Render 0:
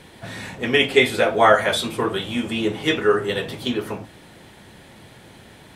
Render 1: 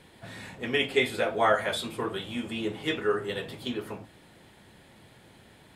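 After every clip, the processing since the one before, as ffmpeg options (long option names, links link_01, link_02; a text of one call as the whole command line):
ffmpeg -i in.wav -af "bandreject=frequency=5900:width=12,volume=-9dB" out.wav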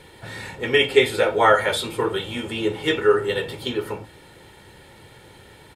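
ffmpeg -i in.wav -af "aecho=1:1:2.2:0.48,volume=7dB" out.wav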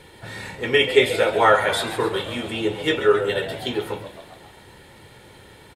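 ffmpeg -i in.wav -filter_complex "[0:a]asplit=8[link_01][link_02][link_03][link_04][link_05][link_06][link_07][link_08];[link_02]adelay=134,afreqshift=82,volume=-12.5dB[link_09];[link_03]adelay=268,afreqshift=164,volume=-16.8dB[link_10];[link_04]adelay=402,afreqshift=246,volume=-21.1dB[link_11];[link_05]adelay=536,afreqshift=328,volume=-25.4dB[link_12];[link_06]adelay=670,afreqshift=410,volume=-29.7dB[link_13];[link_07]adelay=804,afreqshift=492,volume=-34dB[link_14];[link_08]adelay=938,afreqshift=574,volume=-38.3dB[link_15];[link_01][link_09][link_10][link_11][link_12][link_13][link_14][link_15]amix=inputs=8:normalize=0" out.wav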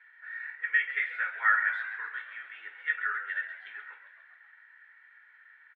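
ffmpeg -i in.wav -af "asuperpass=centerf=1700:order=4:qfactor=3.3" out.wav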